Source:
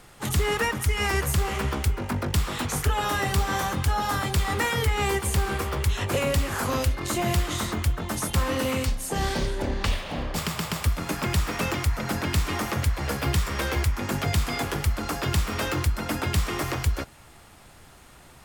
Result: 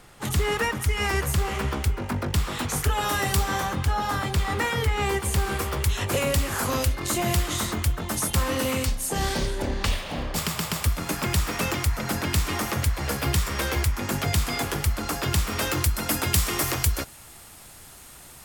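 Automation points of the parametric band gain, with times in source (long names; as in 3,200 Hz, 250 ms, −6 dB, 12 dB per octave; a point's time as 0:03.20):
parametric band 14,000 Hz 1.9 octaves
0:02.41 −1 dB
0:03.35 +7.5 dB
0:03.69 −4 dB
0:05.05 −4 dB
0:05.59 +5.5 dB
0:15.47 +5.5 dB
0:15.99 +13.5 dB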